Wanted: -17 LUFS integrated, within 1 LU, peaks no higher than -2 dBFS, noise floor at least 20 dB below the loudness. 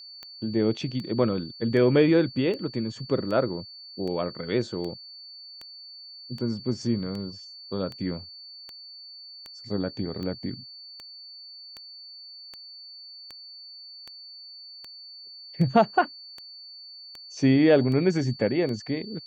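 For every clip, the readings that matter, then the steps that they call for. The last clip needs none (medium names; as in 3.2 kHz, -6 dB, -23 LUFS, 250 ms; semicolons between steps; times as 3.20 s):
clicks found 25; steady tone 4.5 kHz; tone level -42 dBFS; loudness -26.0 LUFS; peak level -6.5 dBFS; loudness target -17.0 LUFS
-> de-click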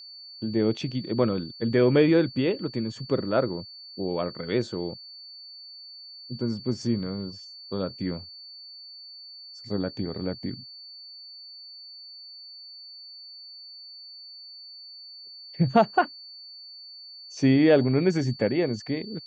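clicks found 0; steady tone 4.5 kHz; tone level -42 dBFS
-> band-stop 4.5 kHz, Q 30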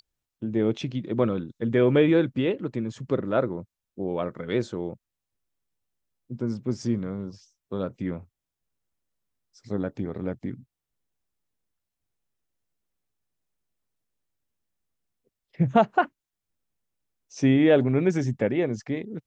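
steady tone not found; loudness -26.0 LUFS; peak level -6.5 dBFS; loudness target -17.0 LUFS
-> trim +9 dB; peak limiter -2 dBFS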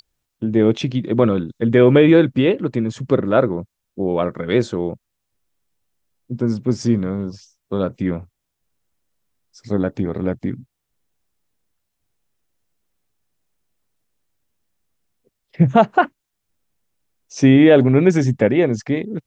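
loudness -17.5 LUFS; peak level -2.0 dBFS; noise floor -78 dBFS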